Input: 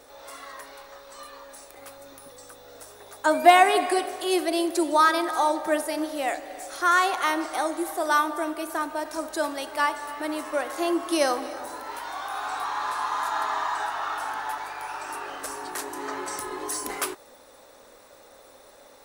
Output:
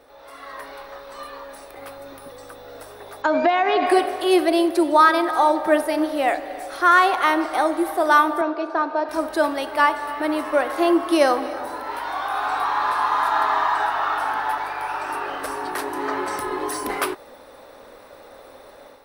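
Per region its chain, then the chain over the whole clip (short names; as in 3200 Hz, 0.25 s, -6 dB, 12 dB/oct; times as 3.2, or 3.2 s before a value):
3.22–3.87 brick-wall FIR low-pass 7400 Hz + compressor 16:1, threshold -21 dBFS
8.41–9.09 speaker cabinet 300–4900 Hz, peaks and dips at 480 Hz +4 dB, 2000 Hz -8 dB, 3100 Hz -8 dB + mismatched tape noise reduction decoder only
whole clip: bell 7000 Hz -10.5 dB 0.53 oct; AGC gain up to 8 dB; high shelf 4000 Hz -7.5 dB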